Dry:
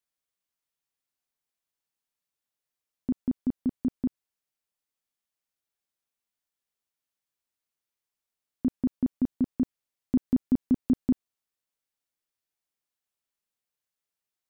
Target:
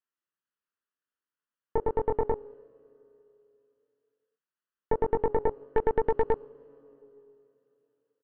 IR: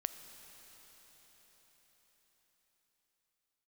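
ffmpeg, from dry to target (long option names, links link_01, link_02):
-filter_complex "[0:a]lowpass=1000,aecho=1:1:1.2:0.67,acompressor=threshold=-21dB:ratio=6,highpass=frequency=320:poles=1,asplit=2[link_01][link_02];[1:a]atrim=start_sample=2205[link_03];[link_02][link_03]afir=irnorm=-1:irlink=0,volume=5dB[link_04];[link_01][link_04]amix=inputs=2:normalize=0,asetrate=77616,aresample=44100,flanger=delay=20:depth=7.1:speed=0.16,aeval=exprs='0.158*(cos(1*acos(clip(val(0)/0.158,-1,1)))-cos(1*PI/2))+0.0501*(cos(4*acos(clip(val(0)/0.158,-1,1)))-cos(4*PI/2))+0.00447*(cos(7*acos(clip(val(0)/0.158,-1,1)))-cos(7*PI/2))':channel_layout=same"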